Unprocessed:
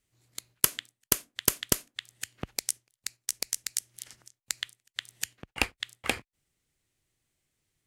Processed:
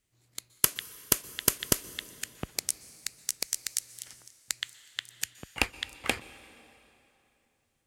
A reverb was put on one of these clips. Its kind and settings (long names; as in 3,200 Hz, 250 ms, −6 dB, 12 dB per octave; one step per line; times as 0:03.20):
dense smooth reverb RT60 3.1 s, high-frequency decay 0.8×, pre-delay 110 ms, DRR 16.5 dB